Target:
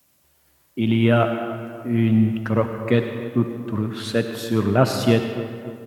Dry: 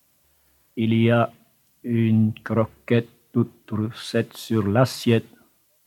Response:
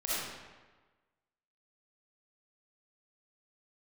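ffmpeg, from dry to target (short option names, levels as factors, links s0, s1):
-filter_complex "[0:a]asplit=2[s0][s1];[s1]adelay=289,lowpass=f=2300:p=1,volume=0.178,asplit=2[s2][s3];[s3]adelay=289,lowpass=f=2300:p=1,volume=0.54,asplit=2[s4][s5];[s5]adelay=289,lowpass=f=2300:p=1,volume=0.54,asplit=2[s6][s7];[s7]adelay=289,lowpass=f=2300:p=1,volume=0.54,asplit=2[s8][s9];[s9]adelay=289,lowpass=f=2300:p=1,volume=0.54[s10];[s0][s2][s4][s6][s8][s10]amix=inputs=6:normalize=0,asplit=2[s11][s12];[1:a]atrim=start_sample=2205,asetrate=27783,aresample=44100,lowshelf=f=150:g=-9.5[s13];[s12][s13]afir=irnorm=-1:irlink=0,volume=0.178[s14];[s11][s14]amix=inputs=2:normalize=0"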